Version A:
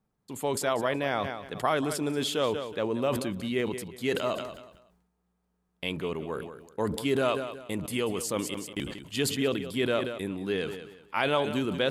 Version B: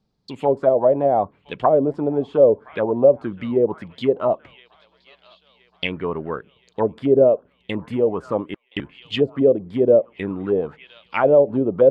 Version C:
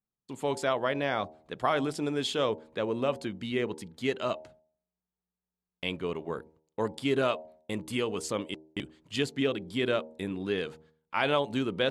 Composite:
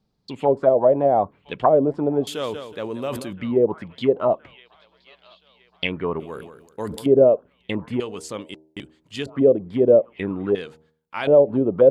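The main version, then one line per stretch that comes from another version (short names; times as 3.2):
B
2.27–3.33 from A
6.2–7.06 from A
8–9.26 from C
10.55–11.27 from C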